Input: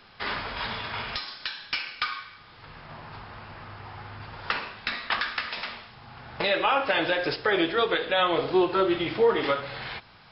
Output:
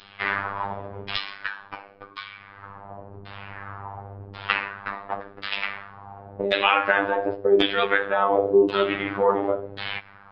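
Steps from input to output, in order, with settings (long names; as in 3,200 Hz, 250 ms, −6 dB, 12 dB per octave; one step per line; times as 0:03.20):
pitch vibrato 15 Hz 32 cents
auto-filter low-pass saw down 0.92 Hz 340–3,900 Hz
phases set to zero 99.5 Hz
level +3.5 dB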